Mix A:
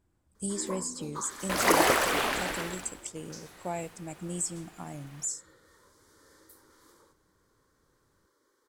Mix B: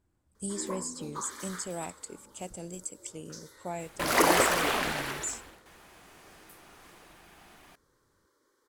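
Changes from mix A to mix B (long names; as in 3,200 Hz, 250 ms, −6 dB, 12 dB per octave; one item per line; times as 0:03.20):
speech: send off
second sound: entry +2.50 s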